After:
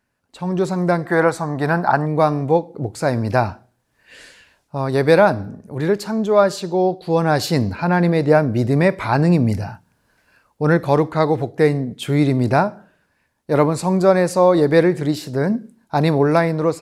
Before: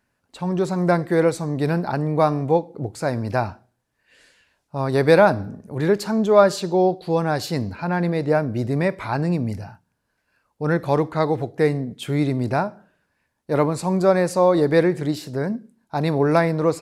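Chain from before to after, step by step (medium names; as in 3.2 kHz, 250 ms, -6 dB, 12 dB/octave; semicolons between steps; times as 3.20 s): 1.05–2.06 s: high-order bell 1.1 kHz +10 dB; level rider gain up to 14 dB; trim -1 dB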